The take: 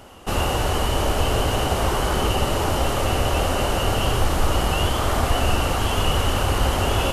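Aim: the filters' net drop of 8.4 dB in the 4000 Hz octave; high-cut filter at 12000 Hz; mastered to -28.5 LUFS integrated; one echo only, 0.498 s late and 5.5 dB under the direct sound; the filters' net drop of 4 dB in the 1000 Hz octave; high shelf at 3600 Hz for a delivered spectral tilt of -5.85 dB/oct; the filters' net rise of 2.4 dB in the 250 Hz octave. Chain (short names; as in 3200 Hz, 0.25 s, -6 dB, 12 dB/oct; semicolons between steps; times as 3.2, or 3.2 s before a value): LPF 12000 Hz; bell 250 Hz +3.5 dB; bell 1000 Hz -4.5 dB; high shelf 3600 Hz -8.5 dB; bell 4000 Hz -7.5 dB; echo 0.498 s -5.5 dB; gain -6 dB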